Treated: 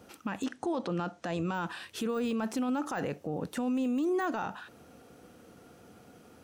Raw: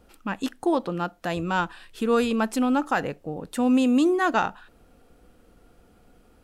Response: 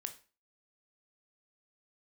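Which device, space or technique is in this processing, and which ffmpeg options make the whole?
broadcast voice chain: -filter_complex "[0:a]highpass=frequency=90:width=0.5412,highpass=frequency=90:width=1.3066,deesser=0.95,acompressor=threshold=-25dB:ratio=6,equalizer=frequency=6000:width_type=o:width=0.23:gain=6,alimiter=level_in=4.5dB:limit=-24dB:level=0:latency=1:release=19,volume=-4.5dB,asettb=1/sr,asplit=3[link_01][link_02][link_03];[link_01]atrim=end=0.444[link_04];[link_02]atrim=start=0.44:end=1.54,asetpts=PTS-STARTPTS,afade=type=in:duration=0.004:curve=qsin,afade=type=out:start_time=1.096:duration=0.004:curve=qsin,lowpass=frequency=8700:width=0.5412,lowpass=frequency=8700:width=1.3066[link_05];[link_03]atrim=start=1.536[link_06];[link_04][link_05]acrossfade=duration=0.004:curve1=hsin:curve2=qsin[link_07];[link_07][link_06]acrossfade=duration=0.004:curve1=qsin:curve2=hsin,volume=4dB"

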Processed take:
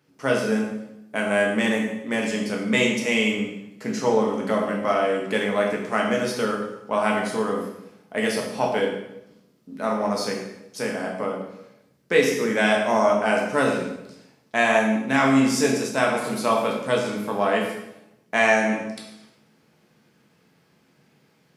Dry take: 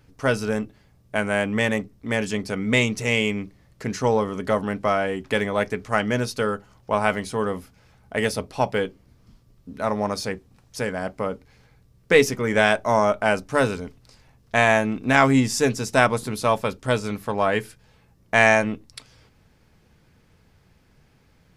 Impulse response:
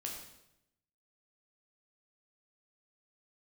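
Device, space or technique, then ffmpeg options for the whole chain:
far laptop microphone: -filter_complex "[1:a]atrim=start_sample=2205[link_01];[0:a][link_01]afir=irnorm=-1:irlink=0,highpass=frequency=150:width=0.5412,highpass=frequency=150:width=1.3066,dynaudnorm=framelen=110:gausssize=3:maxgain=3.5dB,volume=-2dB"

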